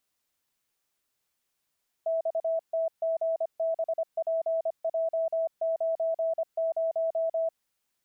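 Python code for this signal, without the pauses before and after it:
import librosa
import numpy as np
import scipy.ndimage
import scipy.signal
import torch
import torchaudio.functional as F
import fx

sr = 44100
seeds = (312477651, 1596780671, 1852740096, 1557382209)

y = fx.morse(sr, text='XTGBPJ90', wpm=25, hz=654.0, level_db=-24.5)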